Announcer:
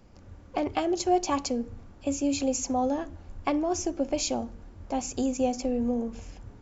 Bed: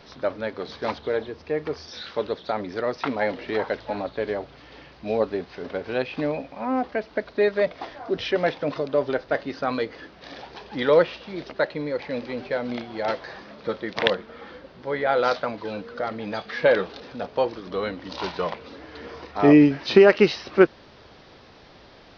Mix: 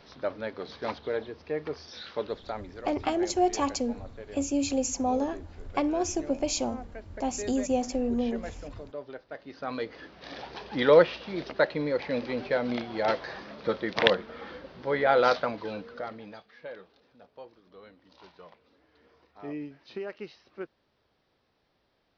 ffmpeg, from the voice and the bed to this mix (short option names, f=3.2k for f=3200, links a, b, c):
-filter_complex "[0:a]adelay=2300,volume=-0.5dB[a];[1:a]volume=11dB,afade=t=out:st=2.26:d=0.6:silence=0.266073,afade=t=in:st=9.38:d=1.1:silence=0.149624,afade=t=out:st=15.26:d=1.22:silence=0.0707946[b];[a][b]amix=inputs=2:normalize=0"